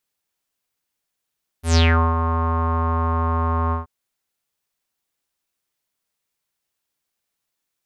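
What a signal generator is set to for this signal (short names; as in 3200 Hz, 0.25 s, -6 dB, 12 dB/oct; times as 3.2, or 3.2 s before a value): synth note square E2 12 dB/oct, low-pass 1100 Hz, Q 7.3, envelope 3.5 oct, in 0.35 s, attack 0.125 s, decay 0.39 s, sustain -8 dB, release 0.14 s, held 2.09 s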